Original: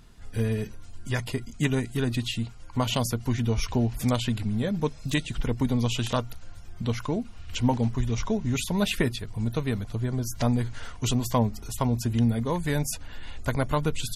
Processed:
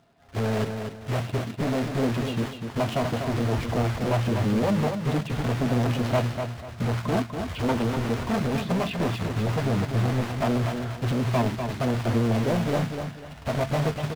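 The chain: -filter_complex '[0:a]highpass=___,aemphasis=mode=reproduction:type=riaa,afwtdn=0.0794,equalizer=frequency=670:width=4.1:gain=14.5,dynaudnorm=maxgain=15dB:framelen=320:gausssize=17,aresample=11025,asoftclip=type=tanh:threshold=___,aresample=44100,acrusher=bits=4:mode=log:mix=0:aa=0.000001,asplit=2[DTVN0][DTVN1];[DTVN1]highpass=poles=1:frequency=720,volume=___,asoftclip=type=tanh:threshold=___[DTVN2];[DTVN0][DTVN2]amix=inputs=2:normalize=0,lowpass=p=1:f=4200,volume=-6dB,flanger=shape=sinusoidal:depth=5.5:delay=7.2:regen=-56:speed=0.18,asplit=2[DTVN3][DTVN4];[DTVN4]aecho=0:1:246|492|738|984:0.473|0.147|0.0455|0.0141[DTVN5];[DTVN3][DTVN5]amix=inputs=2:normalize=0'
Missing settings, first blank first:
130, -17dB, 23dB, -14dB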